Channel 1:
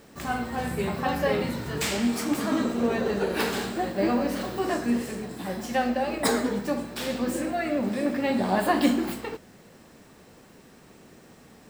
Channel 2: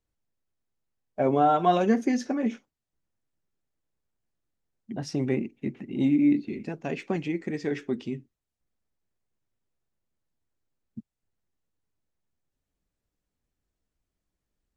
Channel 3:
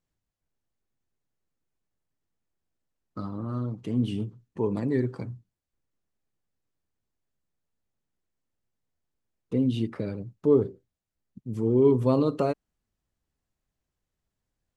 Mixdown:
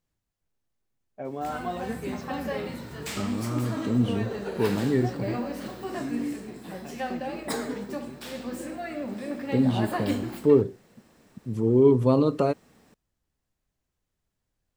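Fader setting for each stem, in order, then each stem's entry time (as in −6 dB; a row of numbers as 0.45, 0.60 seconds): −7.0, −11.5, +2.0 decibels; 1.25, 0.00, 0.00 seconds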